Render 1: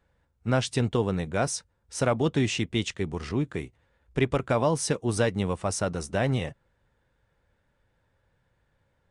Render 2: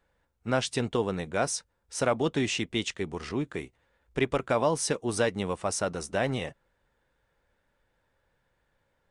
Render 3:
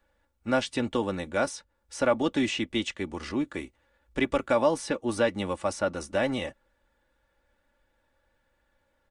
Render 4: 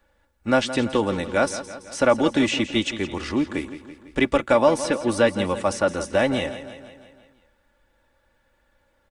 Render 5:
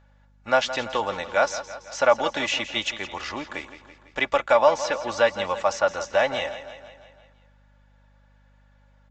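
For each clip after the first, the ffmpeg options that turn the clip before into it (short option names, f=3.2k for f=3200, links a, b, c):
-af "equalizer=f=98:t=o:w=2.1:g=-8.5"
-filter_complex "[0:a]aecho=1:1:3.5:0.59,acrossover=split=470|3700[a][b][c];[c]acompressor=threshold=-41dB:ratio=6[d];[a][b][d]amix=inputs=3:normalize=0"
-af "aecho=1:1:167|334|501|668|835|1002:0.224|0.128|0.0727|0.0415|0.0236|0.0135,volume=6dB"
-af "aresample=16000,aresample=44100,aeval=exprs='val(0)+0.00631*(sin(2*PI*50*n/s)+sin(2*PI*2*50*n/s)/2+sin(2*PI*3*50*n/s)/3+sin(2*PI*4*50*n/s)/4+sin(2*PI*5*50*n/s)/5)':c=same,lowshelf=f=470:t=q:w=1.5:g=-12"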